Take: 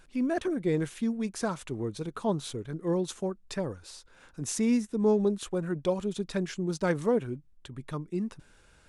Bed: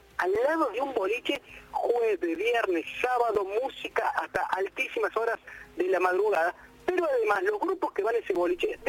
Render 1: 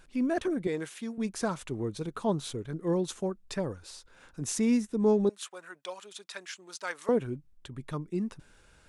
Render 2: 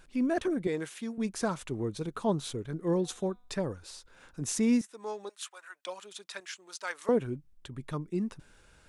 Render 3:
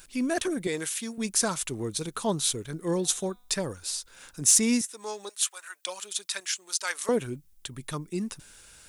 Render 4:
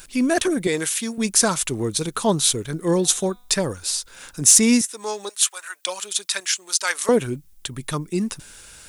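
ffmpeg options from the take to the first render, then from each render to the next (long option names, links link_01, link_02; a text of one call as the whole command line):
ffmpeg -i in.wav -filter_complex "[0:a]asettb=1/sr,asplit=3[link_01][link_02][link_03];[link_01]atrim=end=0.674[link_04];[link_02]atrim=start=0.67:end=1.18,asetpts=PTS-STARTPTS,afade=type=in:duration=0.004:curve=qsin,afade=type=out:start_time=0.506:duration=0.004:curve=qsin,highpass=frequency=550:poles=1[link_05];[link_03]atrim=start=1.176[link_06];[link_04][link_05]acrossfade=duration=0.004:curve1=hsin:curve2=qsin[link_07];[link_07][link_06]acrossfade=duration=0.004:curve1=qsin:curve2=hsin,asettb=1/sr,asplit=3[link_08][link_09][link_10];[link_08]atrim=end=5.294[link_11];[link_09]atrim=start=5.29:end=7.09,asetpts=PTS-STARTPTS,afade=type=in:duration=0.004:curve=qsin,afade=type=out:start_time=1.796:duration=0.004:curve=qsin,highpass=1100[link_12];[link_10]atrim=start=7.086[link_13];[link_11][link_12]acrossfade=duration=0.004:curve1=hsin:curve2=qsin[link_14];[link_14][link_13]acrossfade=duration=0.004:curve1=qsin:curve2=hsin" out.wav
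ffmpeg -i in.wav -filter_complex "[0:a]asettb=1/sr,asplit=3[link_01][link_02][link_03];[link_01]atrim=end=2.714[link_04];[link_02]atrim=start=2.71:end=3.62,asetpts=PTS-STARTPTS,afade=type=in:duration=0.004:curve=qsin,afade=type=out:start_time=0.906:duration=0.004:curve=qsin,bandreject=frequency=245.6:width_type=h:width=4,bandreject=frequency=491.2:width_type=h:width=4,bandreject=frequency=736.8:width_type=h:width=4,bandreject=frequency=982.4:width_type=h:width=4,bandreject=frequency=1228:width_type=h:width=4,bandreject=frequency=1473.6:width_type=h:width=4,bandreject=frequency=1719.2:width_type=h:width=4,bandreject=frequency=1964.8:width_type=h:width=4,bandreject=frequency=2210.4:width_type=h:width=4,bandreject=frequency=2456:width_type=h:width=4,bandreject=frequency=2701.6:width_type=h:width=4,bandreject=frequency=2947.2:width_type=h:width=4,bandreject=frequency=3192.8:width_type=h:width=4,bandreject=frequency=3438.4:width_type=h:width=4,bandreject=frequency=3684:width_type=h:width=4,bandreject=frequency=3929.6:width_type=h:width=4,bandreject=frequency=4175.2:width_type=h:width=4[link_05];[link_03]atrim=start=3.616[link_06];[link_04][link_05]acrossfade=duration=0.004:curve1=hsin:curve2=qsin[link_07];[link_07][link_06]acrossfade=duration=0.004:curve1=qsin:curve2=hsin,asettb=1/sr,asplit=3[link_08][link_09][link_10];[link_08]atrim=end=4.814[link_11];[link_09]atrim=start=4.81:end=5.87,asetpts=PTS-STARTPTS,afade=type=in:duration=0.004:curve=qsin,afade=type=out:start_time=1.056:duration=0.004:curve=qsin,highpass=950[link_12];[link_10]atrim=start=5.866[link_13];[link_11][link_12]acrossfade=duration=0.004:curve1=hsin:curve2=qsin[link_14];[link_14][link_13]acrossfade=duration=0.004:curve1=qsin:curve2=hsin,asettb=1/sr,asplit=3[link_15][link_16][link_17];[link_15]atrim=end=6.404[link_18];[link_16]atrim=start=6.4:end=7.05,asetpts=PTS-STARTPTS,afade=type=in:duration=0.004:curve=qsin,afade=type=out:start_time=0.646:duration=0.004:curve=qsin,highpass=frequency=480:poles=1[link_19];[link_17]atrim=start=7.046[link_20];[link_18][link_19]acrossfade=duration=0.004:curve1=hsin:curve2=qsin[link_21];[link_21][link_20]acrossfade=duration=0.004:curve1=qsin:curve2=hsin" out.wav
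ffmpeg -i in.wav -af "crystalizer=i=6:c=0,asoftclip=type=tanh:threshold=-6.5dB" out.wav
ffmpeg -i in.wav -af "volume=8dB,alimiter=limit=-2dB:level=0:latency=1" out.wav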